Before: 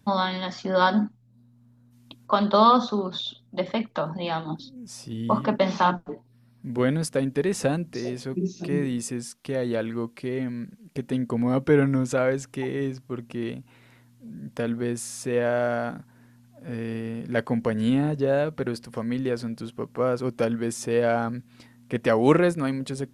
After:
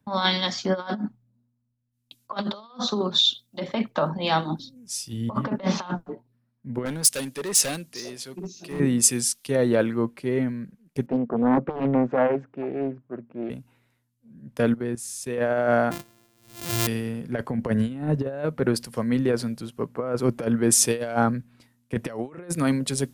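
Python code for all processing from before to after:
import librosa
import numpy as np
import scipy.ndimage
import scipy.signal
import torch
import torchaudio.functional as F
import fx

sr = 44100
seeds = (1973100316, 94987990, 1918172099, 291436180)

y = fx.chain(x, sr, fx.low_shelf(hz=410.0, db=-9.0),
    fx.clip_hard(threshold_db=-28.0), at=(6.85, 8.8))
y = fx.chain(y, sr, fx.highpass(hz=160.0, slope=12),
    fx.spacing_loss(db_at_10k=45),
    fx.doppler_dist(depth_ms=0.76), at=(11.06, 13.5))
y = fx.chain(y, sr, fx.highpass(hz=48.0, slope=12),
    fx.level_steps(step_db=15), at=(14.73, 15.38))
y = fx.chain(y, sr, fx.sample_sort(block=128),
    fx.pre_swell(db_per_s=58.0), at=(15.91, 16.87))
y = fx.high_shelf(y, sr, hz=8400.0, db=9.0)
y = fx.over_compress(y, sr, threshold_db=-25.0, ratio=-0.5)
y = fx.band_widen(y, sr, depth_pct=100)
y = F.gain(torch.from_numpy(y), 2.0).numpy()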